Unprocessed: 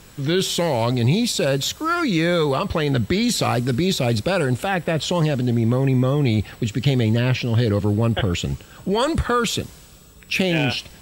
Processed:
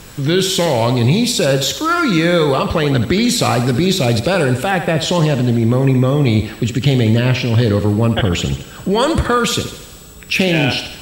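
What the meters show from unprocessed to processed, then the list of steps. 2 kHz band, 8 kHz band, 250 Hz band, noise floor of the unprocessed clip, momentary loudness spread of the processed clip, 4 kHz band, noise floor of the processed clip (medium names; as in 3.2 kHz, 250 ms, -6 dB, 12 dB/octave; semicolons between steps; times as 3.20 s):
+6.0 dB, +6.0 dB, +5.5 dB, -45 dBFS, 4 LU, +6.0 dB, -35 dBFS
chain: in parallel at -3 dB: compression, threshold -33 dBFS, peak gain reduction 18 dB; on the sum: thinning echo 74 ms, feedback 56%, high-pass 180 Hz, level -9.5 dB; trim +4 dB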